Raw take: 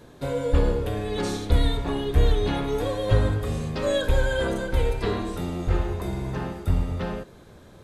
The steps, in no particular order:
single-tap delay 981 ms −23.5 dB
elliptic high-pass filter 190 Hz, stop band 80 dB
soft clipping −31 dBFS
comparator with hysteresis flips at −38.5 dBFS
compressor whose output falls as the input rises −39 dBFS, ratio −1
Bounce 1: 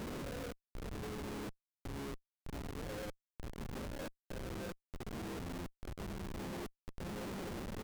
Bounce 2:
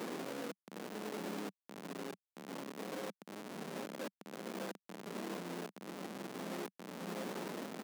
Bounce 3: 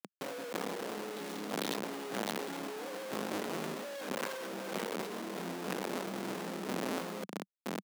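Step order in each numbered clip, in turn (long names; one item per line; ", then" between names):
single-tap delay, then compressor whose output falls as the input rises, then soft clipping, then elliptic high-pass filter, then comparator with hysteresis
single-tap delay, then compressor whose output falls as the input rises, then soft clipping, then comparator with hysteresis, then elliptic high-pass filter
single-tap delay, then comparator with hysteresis, then soft clipping, then elliptic high-pass filter, then compressor whose output falls as the input rises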